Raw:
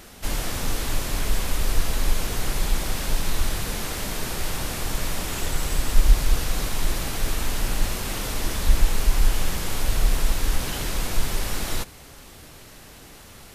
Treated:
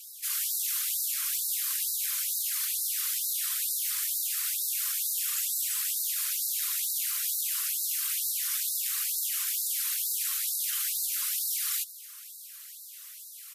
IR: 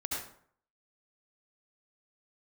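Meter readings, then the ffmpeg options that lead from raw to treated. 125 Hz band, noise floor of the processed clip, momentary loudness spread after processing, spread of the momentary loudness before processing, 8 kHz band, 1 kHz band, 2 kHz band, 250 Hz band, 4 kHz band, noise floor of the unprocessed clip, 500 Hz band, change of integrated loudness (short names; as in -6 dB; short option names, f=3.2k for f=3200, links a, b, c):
under -40 dB, -46 dBFS, 9 LU, 14 LU, +3.5 dB, -18.0 dB, -9.5 dB, under -40 dB, -3.0 dB, -45 dBFS, under -40 dB, -0.5 dB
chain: -af "afftfilt=real='hypot(re,im)*cos(2*PI*random(0))':imag='hypot(re,im)*sin(2*PI*random(1))':win_size=512:overlap=0.75,aresample=32000,aresample=44100,aemphasis=mode=production:type=75fm,afftfilt=real='re*gte(b*sr/1024,980*pow(3800/980,0.5+0.5*sin(2*PI*2.2*pts/sr)))':imag='im*gte(b*sr/1024,980*pow(3800/980,0.5+0.5*sin(2*PI*2.2*pts/sr)))':win_size=1024:overlap=0.75,volume=-2.5dB"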